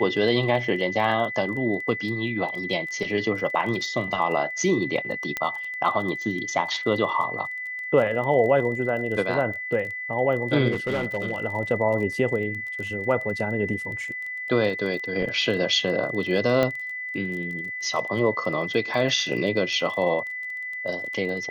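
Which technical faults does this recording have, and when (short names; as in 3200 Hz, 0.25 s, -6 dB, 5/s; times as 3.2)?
crackle 21/s -32 dBFS
tone 2000 Hz -30 dBFS
5.37 pop -11 dBFS
10.71–11.38 clipped -21 dBFS
16.63 pop -10 dBFS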